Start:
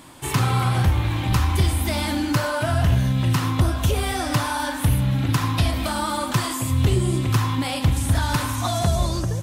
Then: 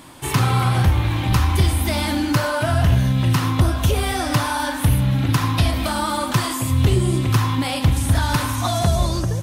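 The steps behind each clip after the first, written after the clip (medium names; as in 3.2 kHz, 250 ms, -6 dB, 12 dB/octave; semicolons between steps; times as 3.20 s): peaking EQ 7.5 kHz -3 dB 0.23 oct; trim +2.5 dB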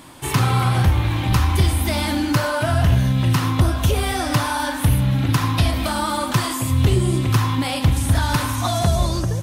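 no audible change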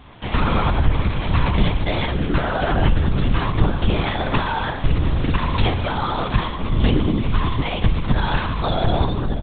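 delay 599 ms -14.5 dB; LPC vocoder at 8 kHz whisper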